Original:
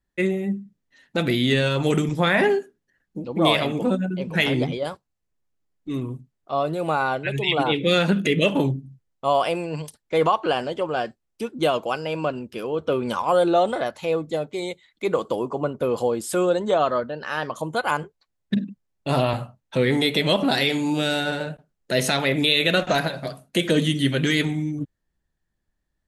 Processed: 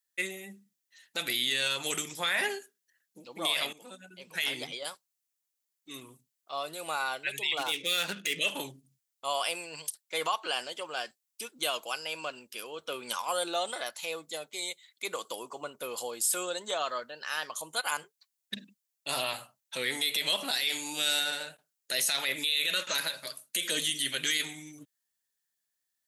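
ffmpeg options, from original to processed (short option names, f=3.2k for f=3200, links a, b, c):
-filter_complex "[0:a]asettb=1/sr,asplit=3[a][b][c];[a]atrim=end=7.574[d];[b]atrim=start=7.57:end=8.39,asetpts=PTS-STARTPTS,afade=t=in:d=0.004:c=qsin,afade=t=out:st=0.816:d=0.004:c=qsin,adynamicsmooth=sensitivity=7.5:basefreq=3.4k[e];[c]atrim=start=8.386[f];[d][e]acrossfade=d=0.004:c1=hsin:c2=qsin[g];[g][f]acrossfade=d=0.004:c1=qsin:c2=hsin,asettb=1/sr,asplit=3[h][i][j];[h]atrim=end=22.304[k];[i]atrim=start=22.3:end=23.71,asetpts=PTS-STARTPTS,afade=t=in:d=0.004:c=qsin,afade=t=out:st=1.406:d=0.004:c=qsin,asuperstop=centerf=730:order=4:qfactor=5.3[l];[j]atrim=start=23.706[m];[k][l]acrossfade=d=0.004:c1=hsin:c2=qsin[n];[n][m]acrossfade=d=0.004:c1=qsin:c2=hsin,asplit=2[o][p];[o]atrim=end=3.73,asetpts=PTS-STARTPTS,afade=t=out:st=3.726:d=0.004:c=hsin:silence=0.188365[q];[p]atrim=start=3.73,asetpts=PTS-STARTPTS,afade=t=in:d=1:silence=0.188365[r];[q][r]concat=n=2:v=0:a=1,aderivative,alimiter=level_in=1dB:limit=-24dB:level=0:latency=1:release=27,volume=-1dB,volume=7dB"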